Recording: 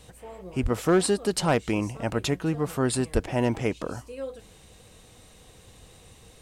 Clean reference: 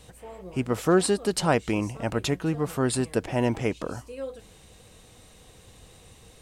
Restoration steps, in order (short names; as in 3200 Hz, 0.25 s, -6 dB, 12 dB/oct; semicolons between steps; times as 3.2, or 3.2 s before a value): clip repair -14 dBFS; de-plosive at 0.62/3.13